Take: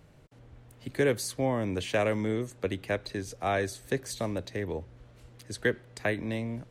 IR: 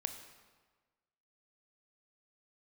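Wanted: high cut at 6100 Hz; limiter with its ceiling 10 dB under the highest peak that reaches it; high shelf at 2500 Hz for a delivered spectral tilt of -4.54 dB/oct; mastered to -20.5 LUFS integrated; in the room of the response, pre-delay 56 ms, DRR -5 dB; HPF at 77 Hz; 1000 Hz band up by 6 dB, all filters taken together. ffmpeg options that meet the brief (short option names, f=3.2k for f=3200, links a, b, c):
-filter_complex "[0:a]highpass=77,lowpass=6.1k,equalizer=f=1k:t=o:g=8,highshelf=f=2.5k:g=5.5,alimiter=limit=-21.5dB:level=0:latency=1,asplit=2[a][b];[1:a]atrim=start_sample=2205,adelay=56[c];[b][c]afir=irnorm=-1:irlink=0,volume=5.5dB[d];[a][d]amix=inputs=2:normalize=0,volume=6.5dB"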